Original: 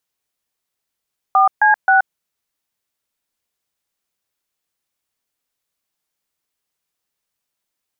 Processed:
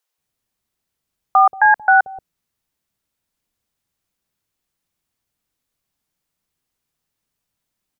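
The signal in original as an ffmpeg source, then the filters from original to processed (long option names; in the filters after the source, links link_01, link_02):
-f lavfi -i "aevalsrc='0.266*clip(min(mod(t,0.265),0.127-mod(t,0.265))/0.002,0,1)*(eq(floor(t/0.265),0)*(sin(2*PI*770*mod(t,0.265))+sin(2*PI*1209*mod(t,0.265)))+eq(floor(t/0.265),1)*(sin(2*PI*852*mod(t,0.265))+sin(2*PI*1633*mod(t,0.265)))+eq(floor(t/0.265),2)*(sin(2*PI*770*mod(t,0.265))+sin(2*PI*1477*mod(t,0.265))))':duration=0.795:sample_rate=44100"
-filter_complex "[0:a]lowshelf=frequency=420:gain=11,acrossover=split=440[link_01][link_02];[link_01]adelay=180[link_03];[link_03][link_02]amix=inputs=2:normalize=0"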